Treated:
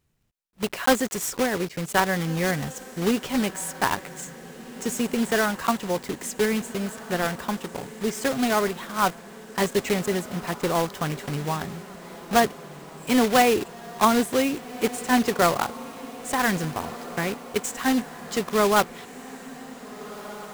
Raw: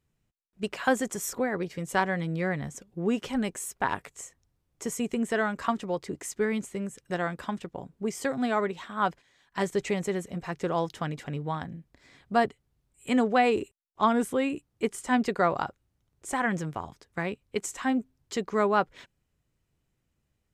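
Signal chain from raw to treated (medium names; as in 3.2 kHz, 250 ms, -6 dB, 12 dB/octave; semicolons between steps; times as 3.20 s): block-companded coder 3-bit; on a send: echo that smears into a reverb 1654 ms, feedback 59%, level -16 dB; on the sum: trim +4 dB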